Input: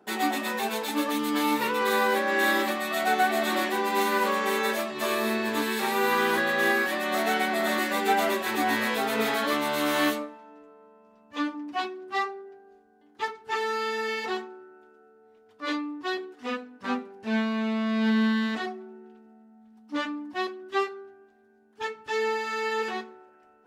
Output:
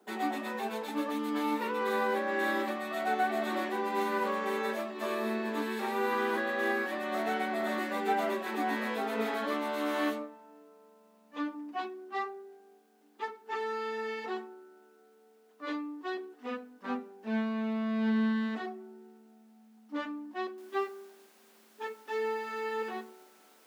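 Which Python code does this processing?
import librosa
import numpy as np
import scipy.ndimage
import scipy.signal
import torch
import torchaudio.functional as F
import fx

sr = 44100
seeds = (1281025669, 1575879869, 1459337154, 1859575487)

y = fx.noise_floor_step(x, sr, seeds[0], at_s=20.58, before_db=-63, after_db=-50, tilt_db=0.0)
y = scipy.signal.sosfilt(scipy.signal.ellip(4, 1.0, 40, 200.0, 'highpass', fs=sr, output='sos'), y)
y = fx.high_shelf(y, sr, hz=2600.0, db=-10.0)
y = y * librosa.db_to_amplitude(-4.5)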